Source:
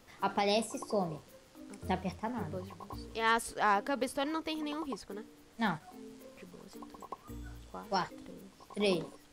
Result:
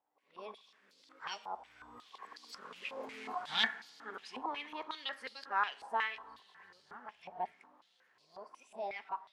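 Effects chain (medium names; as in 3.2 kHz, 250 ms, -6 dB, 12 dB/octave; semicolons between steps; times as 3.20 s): reverse the whole clip; Doppler pass-by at 3.21 s, 8 m/s, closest 2.2 m; level rider gain up to 16 dB; saturation -16 dBFS, distortion -13 dB; two-slope reverb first 0.49 s, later 4.9 s, from -18 dB, DRR 12 dB; step-sequenced band-pass 5.5 Hz 820–4600 Hz; trim +8 dB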